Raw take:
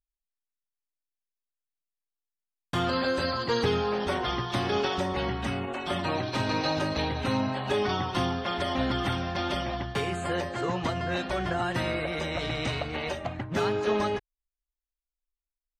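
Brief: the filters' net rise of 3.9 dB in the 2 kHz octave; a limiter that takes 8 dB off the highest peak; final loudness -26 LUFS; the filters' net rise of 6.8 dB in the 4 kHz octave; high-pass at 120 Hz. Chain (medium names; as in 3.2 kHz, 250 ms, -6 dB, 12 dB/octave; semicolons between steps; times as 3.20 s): high-pass 120 Hz; peaking EQ 2 kHz +3 dB; peaking EQ 4 kHz +7.5 dB; trim +3 dB; peak limiter -17 dBFS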